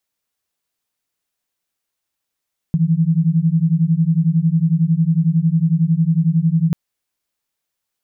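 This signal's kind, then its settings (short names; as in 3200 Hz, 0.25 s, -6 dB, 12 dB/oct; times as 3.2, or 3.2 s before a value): beating tones 158 Hz, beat 11 Hz, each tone -15.5 dBFS 3.99 s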